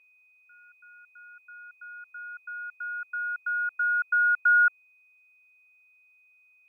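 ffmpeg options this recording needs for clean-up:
-af "bandreject=f=2.5k:w=30,agate=range=-21dB:threshold=-54dB"

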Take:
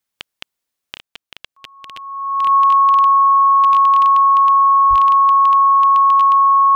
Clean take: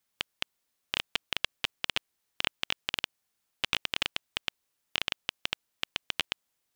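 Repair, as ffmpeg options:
-filter_complex "[0:a]bandreject=f=1.1k:w=30,asplit=3[a][b][c];[a]afade=t=out:st=4.89:d=0.02[d];[b]highpass=f=140:w=0.5412,highpass=f=140:w=1.3066,afade=t=in:st=4.89:d=0.02,afade=t=out:st=5.01:d=0.02[e];[c]afade=t=in:st=5.01:d=0.02[f];[d][e][f]amix=inputs=3:normalize=0,asetnsamples=n=441:p=0,asendcmd='0.96 volume volume 7.5dB',volume=0dB"

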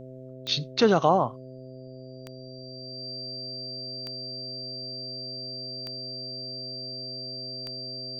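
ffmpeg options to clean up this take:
-af "adeclick=t=4,bandreject=f=129.5:t=h:w=4,bandreject=f=259:t=h:w=4,bandreject=f=388.5:t=h:w=4,bandreject=f=518:t=h:w=4,bandreject=f=647.5:t=h:w=4,bandreject=f=4.7k:w=30,agate=range=-21dB:threshold=-35dB"

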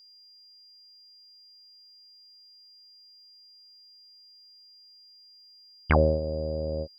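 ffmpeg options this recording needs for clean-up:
-af "bandreject=f=4.8k:w=30"

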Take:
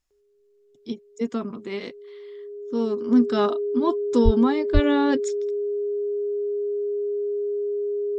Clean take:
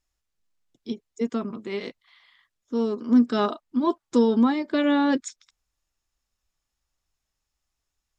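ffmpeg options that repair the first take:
-filter_complex "[0:a]bandreject=f=410:w=30,asplit=3[a][b][c];[a]afade=t=out:st=4.24:d=0.02[d];[b]highpass=f=140:w=0.5412,highpass=f=140:w=1.3066,afade=t=in:st=4.24:d=0.02,afade=t=out:st=4.36:d=0.02[e];[c]afade=t=in:st=4.36:d=0.02[f];[d][e][f]amix=inputs=3:normalize=0,asplit=3[g][h][i];[g]afade=t=out:st=4.73:d=0.02[j];[h]highpass=f=140:w=0.5412,highpass=f=140:w=1.3066,afade=t=in:st=4.73:d=0.02,afade=t=out:st=4.85:d=0.02[k];[i]afade=t=in:st=4.85:d=0.02[l];[j][k][l]amix=inputs=3:normalize=0"

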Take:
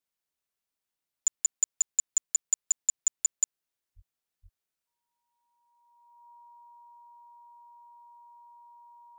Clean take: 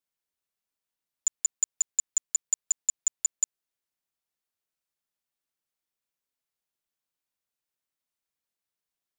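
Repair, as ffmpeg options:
-filter_complex "[0:a]bandreject=f=950:w=30,asplit=3[a][b][c];[a]afade=t=out:st=3.95:d=0.02[d];[b]highpass=f=140:w=0.5412,highpass=f=140:w=1.3066,afade=t=in:st=3.95:d=0.02,afade=t=out:st=4.07:d=0.02[e];[c]afade=t=in:st=4.07:d=0.02[f];[d][e][f]amix=inputs=3:normalize=0,asplit=3[g][h][i];[g]afade=t=out:st=4.42:d=0.02[j];[h]highpass=f=140:w=0.5412,highpass=f=140:w=1.3066,afade=t=in:st=4.42:d=0.02,afade=t=out:st=4.54:d=0.02[k];[i]afade=t=in:st=4.54:d=0.02[l];[j][k][l]amix=inputs=3:normalize=0"

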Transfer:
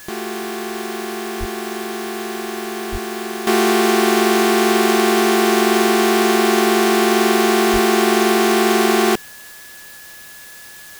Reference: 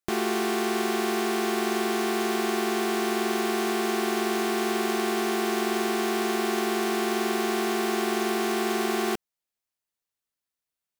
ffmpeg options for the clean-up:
-filter_complex "[0:a]bandreject=f=1.7k:w=30,asplit=3[a][b][c];[a]afade=t=out:st=1.39:d=0.02[d];[b]highpass=f=140:w=0.5412,highpass=f=140:w=1.3066,afade=t=in:st=1.39:d=0.02,afade=t=out:st=1.51:d=0.02[e];[c]afade=t=in:st=1.51:d=0.02[f];[d][e][f]amix=inputs=3:normalize=0,asplit=3[g][h][i];[g]afade=t=out:st=2.91:d=0.02[j];[h]highpass=f=140:w=0.5412,highpass=f=140:w=1.3066,afade=t=in:st=2.91:d=0.02,afade=t=out:st=3.03:d=0.02[k];[i]afade=t=in:st=3.03:d=0.02[l];[j][k][l]amix=inputs=3:normalize=0,asplit=3[m][n][o];[m]afade=t=out:st=7.72:d=0.02[p];[n]highpass=f=140:w=0.5412,highpass=f=140:w=1.3066,afade=t=in:st=7.72:d=0.02,afade=t=out:st=7.84:d=0.02[q];[o]afade=t=in:st=7.84:d=0.02[r];[p][q][r]amix=inputs=3:normalize=0,afwtdn=0.01,asetnsamples=n=441:p=0,asendcmd='3.47 volume volume -11.5dB',volume=0dB"

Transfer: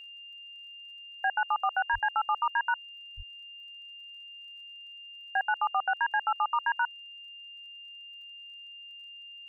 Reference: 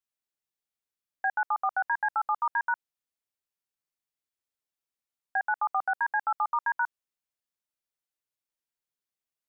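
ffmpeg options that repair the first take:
-filter_complex "[0:a]adeclick=t=4,bandreject=f=2.8k:w=30,asplit=3[a][b][c];[a]afade=t=out:st=1.92:d=0.02[d];[b]highpass=f=140:w=0.5412,highpass=f=140:w=1.3066,afade=t=in:st=1.92:d=0.02,afade=t=out:st=2.04:d=0.02[e];[c]afade=t=in:st=2.04:d=0.02[f];[d][e][f]amix=inputs=3:normalize=0,asplit=3[g][h][i];[g]afade=t=out:st=3.16:d=0.02[j];[h]highpass=f=140:w=0.5412,highpass=f=140:w=1.3066,afade=t=in:st=3.16:d=0.02,afade=t=out:st=3.28:d=0.02[k];[i]afade=t=in:st=3.28:d=0.02[l];[j][k][l]amix=inputs=3:normalize=0"

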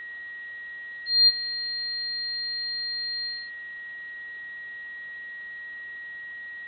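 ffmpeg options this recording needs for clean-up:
-af "bandreject=f=1.9k:w=30,afwtdn=0.0028"

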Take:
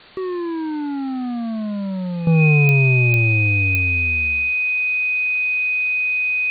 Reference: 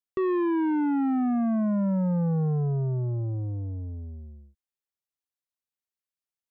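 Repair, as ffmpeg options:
-af "adeclick=t=4,bandreject=f=2.5k:w=30,afwtdn=0.0079,asetnsamples=n=441:p=0,asendcmd='2.27 volume volume -11dB',volume=0dB"

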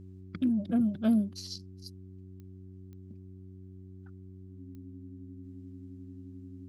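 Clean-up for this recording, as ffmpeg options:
-af "adeclick=t=4,bandreject=f=93.8:t=h:w=4,bandreject=f=187.6:t=h:w=4,bandreject=f=281.4:t=h:w=4,bandreject=f=375.2:t=h:w=4,bandreject=f=270:w=30,agate=range=-21dB:threshold=-40dB"

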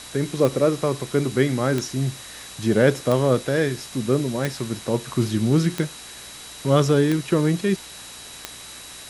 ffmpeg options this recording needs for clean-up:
-af "adeclick=t=4,bandreject=f=59.1:t=h:w=4,bandreject=f=118.2:t=h:w=4,bandreject=f=177.3:t=h:w=4,bandreject=f=236.4:t=h:w=4,bandreject=f=295.5:t=h:w=4,bandreject=f=3.9k:w=30,afwtdn=0.013"

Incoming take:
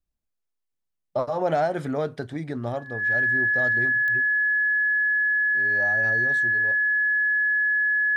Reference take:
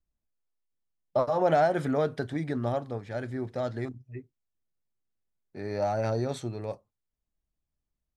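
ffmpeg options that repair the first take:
-af "adeclick=t=4,bandreject=f=1.7k:w=30,asetnsamples=n=441:p=0,asendcmd='5.46 volume volume 5.5dB',volume=0dB"

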